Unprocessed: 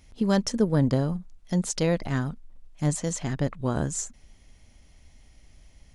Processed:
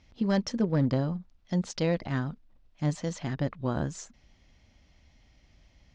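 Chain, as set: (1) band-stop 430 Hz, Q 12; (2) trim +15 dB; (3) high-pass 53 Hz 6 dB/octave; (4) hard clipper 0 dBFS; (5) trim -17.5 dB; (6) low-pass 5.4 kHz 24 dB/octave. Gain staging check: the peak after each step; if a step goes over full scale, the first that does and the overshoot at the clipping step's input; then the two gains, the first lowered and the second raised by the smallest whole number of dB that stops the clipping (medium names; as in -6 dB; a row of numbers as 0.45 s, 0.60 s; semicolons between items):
-10.0 dBFS, +5.0 dBFS, +4.5 dBFS, 0.0 dBFS, -17.5 dBFS, -17.5 dBFS; step 2, 4.5 dB; step 2 +10 dB, step 5 -12.5 dB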